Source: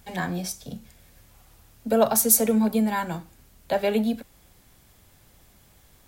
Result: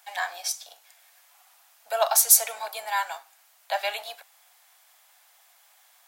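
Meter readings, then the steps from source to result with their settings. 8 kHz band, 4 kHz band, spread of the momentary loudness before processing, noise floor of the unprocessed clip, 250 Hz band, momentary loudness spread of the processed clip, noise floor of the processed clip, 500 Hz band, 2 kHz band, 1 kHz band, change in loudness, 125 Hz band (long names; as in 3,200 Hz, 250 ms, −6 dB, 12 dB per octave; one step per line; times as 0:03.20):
+3.0 dB, +5.0 dB, 19 LU, −57 dBFS, below −40 dB, 19 LU, −60 dBFS, −7.0 dB, +2.5 dB, +1.0 dB, −0.5 dB, below −40 dB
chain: sub-octave generator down 2 octaves, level 0 dB
elliptic high-pass filter 700 Hz, stop band 80 dB
dynamic equaliser 4,800 Hz, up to +5 dB, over −45 dBFS, Q 0.73
level +1.5 dB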